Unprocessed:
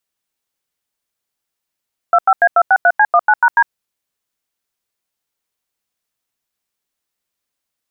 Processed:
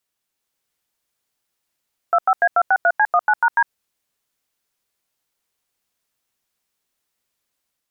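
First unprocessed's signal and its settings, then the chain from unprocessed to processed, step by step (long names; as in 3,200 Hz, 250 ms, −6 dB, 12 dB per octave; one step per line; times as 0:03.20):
touch tones "25A263C19#D", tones 56 ms, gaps 88 ms, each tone −9.5 dBFS
brickwall limiter −11.5 dBFS
automatic gain control gain up to 3 dB
tape wow and flutter 25 cents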